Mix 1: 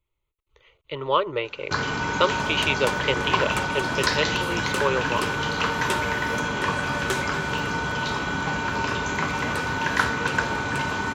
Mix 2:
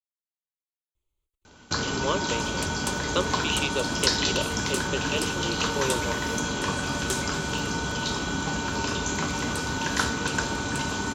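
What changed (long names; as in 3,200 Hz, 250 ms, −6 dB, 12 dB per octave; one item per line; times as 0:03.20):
speech: entry +0.95 s
first sound +3.5 dB
master: add octave-band graphic EQ 125/500/1,000/2,000/8,000 Hz −6/−4/−6/−10/+6 dB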